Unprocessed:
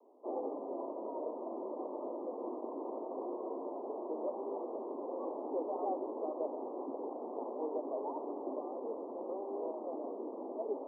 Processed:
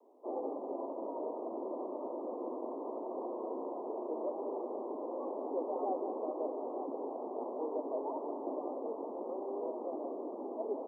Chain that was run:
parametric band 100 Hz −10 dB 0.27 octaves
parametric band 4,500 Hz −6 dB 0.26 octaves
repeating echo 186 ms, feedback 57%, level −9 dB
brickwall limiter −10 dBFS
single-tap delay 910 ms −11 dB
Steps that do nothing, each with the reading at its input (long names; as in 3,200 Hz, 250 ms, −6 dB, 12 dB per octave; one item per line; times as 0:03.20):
parametric band 100 Hz: nothing at its input below 190 Hz
parametric band 4,500 Hz: nothing at its input above 1,200 Hz
brickwall limiter −10 dBFS: peak of its input −24.5 dBFS